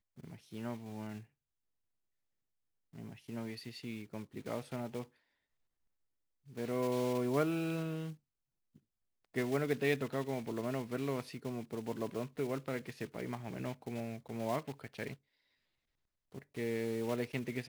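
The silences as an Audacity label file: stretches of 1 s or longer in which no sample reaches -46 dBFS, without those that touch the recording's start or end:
1.210000	2.940000	silence
5.040000	6.500000	silence
8.130000	9.350000	silence
15.140000	16.350000	silence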